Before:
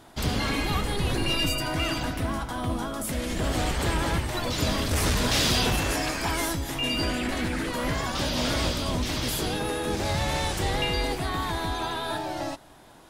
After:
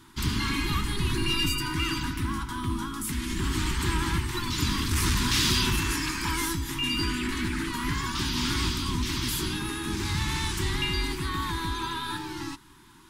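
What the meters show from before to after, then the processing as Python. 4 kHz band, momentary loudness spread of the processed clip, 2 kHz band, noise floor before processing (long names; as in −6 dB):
0.0 dB, 6 LU, −0.5 dB, −50 dBFS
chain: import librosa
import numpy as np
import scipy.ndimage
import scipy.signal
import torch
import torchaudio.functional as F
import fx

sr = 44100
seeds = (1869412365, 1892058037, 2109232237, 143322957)

y = scipy.signal.sosfilt(scipy.signal.ellip(3, 1.0, 50, [370.0, 940.0], 'bandstop', fs=sr, output='sos'), x)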